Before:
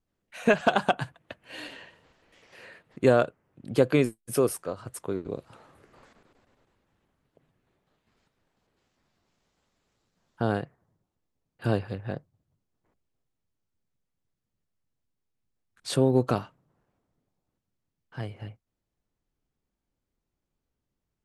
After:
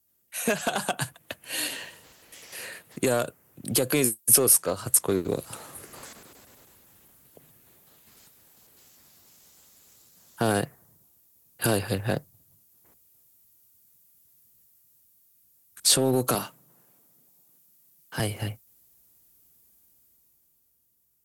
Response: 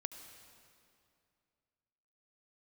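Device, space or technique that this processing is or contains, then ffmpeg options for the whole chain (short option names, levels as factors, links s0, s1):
FM broadcast chain: -filter_complex "[0:a]highpass=50,dynaudnorm=f=140:g=17:m=3.16,acrossover=split=210|6800[s0][s1][s2];[s0]acompressor=threshold=0.0447:ratio=4[s3];[s1]acompressor=threshold=0.158:ratio=4[s4];[s2]acompressor=threshold=0.00562:ratio=4[s5];[s3][s4][s5]amix=inputs=3:normalize=0,aemphasis=mode=production:type=50fm,alimiter=limit=0.211:level=0:latency=1:release=54,asoftclip=type=hard:threshold=0.158,lowpass=f=15000:w=0.5412,lowpass=f=15000:w=1.3066,aemphasis=mode=production:type=50fm,asettb=1/sr,asplit=3[s6][s7][s8];[s6]atrim=end=16.354[s9];[s7]atrim=start=16.35:end=18.2,asetpts=PTS-STARTPTS,afade=t=in:d=0.004:c=qsin,afade=t=out:st=1.846:d=0.004:c=qsin,highpass=f=130:w=0.5412,highpass=f=130:w=1.3066[s10];[s8]atrim=start=18.196[s11];[s9][s10]acrossfade=d=0.004:c1=hsin:c2=qsin[s12];[s12][s11]acrossfade=d=0.004:c1=qsin:c2=hsin"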